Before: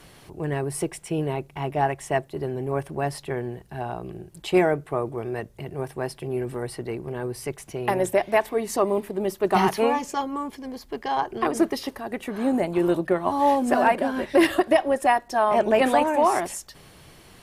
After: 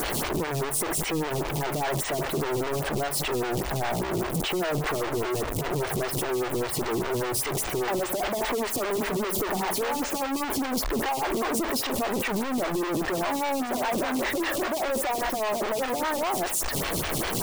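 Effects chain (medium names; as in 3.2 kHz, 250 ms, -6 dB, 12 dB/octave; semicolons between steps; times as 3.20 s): one-bit comparator; lamp-driven phase shifter 5 Hz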